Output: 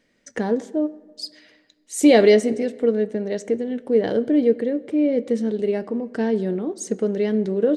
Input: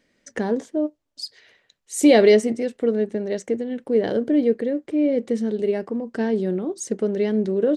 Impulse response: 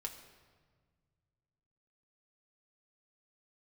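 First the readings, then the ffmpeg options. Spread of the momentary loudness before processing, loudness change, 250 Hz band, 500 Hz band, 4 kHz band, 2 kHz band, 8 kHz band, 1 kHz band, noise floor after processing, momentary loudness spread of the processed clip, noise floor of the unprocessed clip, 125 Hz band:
13 LU, +0.5 dB, +0.5 dB, +0.5 dB, +0.5 dB, +0.5 dB, -0.5 dB, +0.5 dB, -65 dBFS, 12 LU, -70 dBFS, no reading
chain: -filter_complex "[0:a]asplit=2[s0][s1];[1:a]atrim=start_sample=2205,highshelf=f=10000:g=-8.5[s2];[s1][s2]afir=irnorm=-1:irlink=0,volume=0.501[s3];[s0][s3]amix=inputs=2:normalize=0,volume=0.794"

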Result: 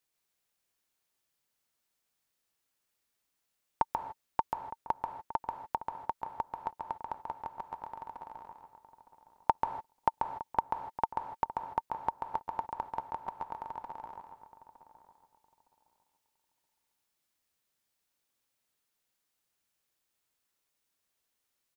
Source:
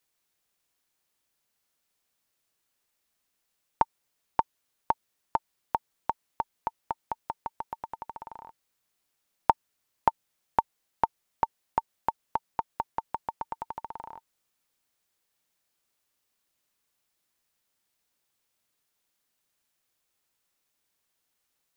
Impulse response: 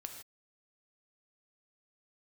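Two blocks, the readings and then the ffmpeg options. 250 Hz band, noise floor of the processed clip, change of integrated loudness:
-3.5 dB, -82 dBFS, -3.5 dB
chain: -filter_complex "[0:a]asplit=2[s0][s1];[s1]adelay=912,lowpass=f=1400:p=1,volume=0.211,asplit=2[s2][s3];[s3]adelay=912,lowpass=f=1400:p=1,volume=0.22,asplit=2[s4][s5];[s5]adelay=912,lowpass=f=1400:p=1,volume=0.22[s6];[s0][s2][s4][s6]amix=inputs=4:normalize=0,asplit=2[s7][s8];[1:a]atrim=start_sample=2205,adelay=137[s9];[s8][s9]afir=irnorm=-1:irlink=0,volume=0.944[s10];[s7][s10]amix=inputs=2:normalize=0,volume=0.562"

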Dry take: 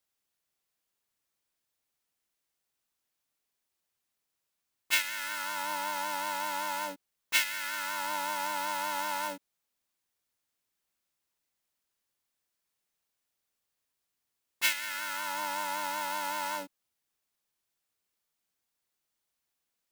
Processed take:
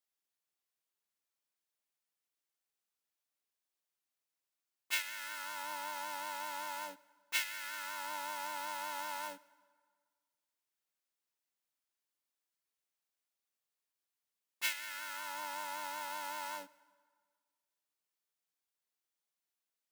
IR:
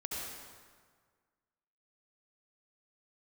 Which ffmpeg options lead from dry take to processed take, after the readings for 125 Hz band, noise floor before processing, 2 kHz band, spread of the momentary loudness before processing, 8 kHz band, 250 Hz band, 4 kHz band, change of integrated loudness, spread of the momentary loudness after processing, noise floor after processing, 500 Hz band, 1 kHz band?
no reading, -84 dBFS, -7.5 dB, 8 LU, -7.5 dB, -11.0 dB, -7.5 dB, -7.5 dB, 8 LU, under -85 dBFS, -8.5 dB, -8.0 dB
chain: -filter_complex "[0:a]highpass=f=290:p=1,asplit=2[s0][s1];[1:a]atrim=start_sample=2205[s2];[s1][s2]afir=irnorm=-1:irlink=0,volume=0.0794[s3];[s0][s3]amix=inputs=2:normalize=0,volume=0.398"

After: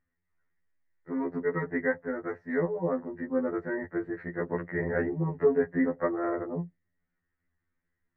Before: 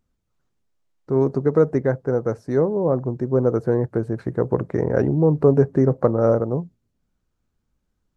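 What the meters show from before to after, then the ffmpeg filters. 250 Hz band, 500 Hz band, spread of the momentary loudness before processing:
-8.5 dB, -10.5 dB, 8 LU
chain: -af "lowpass=f=1900:t=q:w=13,afftfilt=real='re*2*eq(mod(b,4),0)':imag='im*2*eq(mod(b,4),0)':win_size=2048:overlap=0.75,volume=0.422"

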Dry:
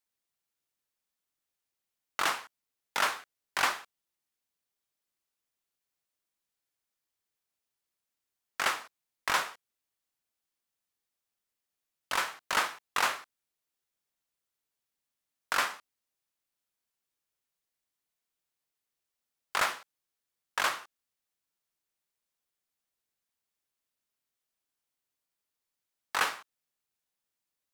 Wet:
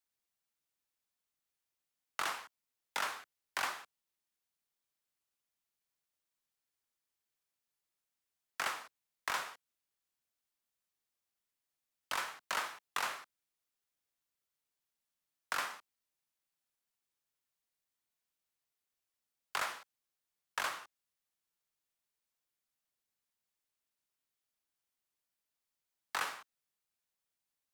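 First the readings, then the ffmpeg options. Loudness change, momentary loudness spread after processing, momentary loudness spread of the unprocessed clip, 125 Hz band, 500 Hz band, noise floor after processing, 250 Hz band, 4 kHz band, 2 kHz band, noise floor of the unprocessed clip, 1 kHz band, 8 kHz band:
-8.0 dB, 11 LU, 12 LU, -8.5 dB, -8.0 dB, under -85 dBFS, -9.5 dB, -8.0 dB, -7.5 dB, under -85 dBFS, -7.5 dB, -7.0 dB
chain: -filter_complex "[0:a]acrossover=split=360|1400|6000[s0][s1][s2][s3];[s0]acompressor=threshold=0.00178:ratio=4[s4];[s1]acompressor=threshold=0.0178:ratio=4[s5];[s2]acompressor=threshold=0.0158:ratio=4[s6];[s3]acompressor=threshold=0.00631:ratio=4[s7];[s4][s5][s6][s7]amix=inputs=4:normalize=0,acrossover=split=350|1100|4100[s8][s9][s10][s11];[s8]acrusher=samples=36:mix=1:aa=0.000001[s12];[s12][s9][s10][s11]amix=inputs=4:normalize=0,volume=0.75"

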